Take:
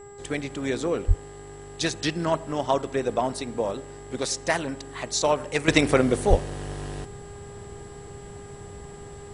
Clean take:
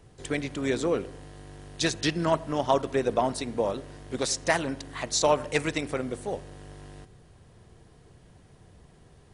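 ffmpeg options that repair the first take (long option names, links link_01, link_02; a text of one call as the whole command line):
ffmpeg -i in.wav -filter_complex "[0:a]bandreject=frequency=405.4:width_type=h:width=4,bandreject=frequency=810.8:width_type=h:width=4,bandreject=frequency=1216.2:width_type=h:width=4,bandreject=frequency=1621.6:width_type=h:width=4,bandreject=frequency=2027:width_type=h:width=4,bandreject=frequency=7700:width=30,asplit=3[link_01][link_02][link_03];[link_01]afade=type=out:start_time=1.07:duration=0.02[link_04];[link_02]highpass=frequency=140:width=0.5412,highpass=frequency=140:width=1.3066,afade=type=in:start_time=1.07:duration=0.02,afade=type=out:start_time=1.19:duration=0.02[link_05];[link_03]afade=type=in:start_time=1.19:duration=0.02[link_06];[link_04][link_05][link_06]amix=inputs=3:normalize=0,asplit=3[link_07][link_08][link_09];[link_07]afade=type=out:start_time=6.29:duration=0.02[link_10];[link_08]highpass=frequency=140:width=0.5412,highpass=frequency=140:width=1.3066,afade=type=in:start_time=6.29:duration=0.02,afade=type=out:start_time=6.41:duration=0.02[link_11];[link_09]afade=type=in:start_time=6.41:duration=0.02[link_12];[link_10][link_11][link_12]amix=inputs=3:normalize=0,asetnsamples=nb_out_samples=441:pad=0,asendcmd='5.68 volume volume -11dB',volume=0dB" out.wav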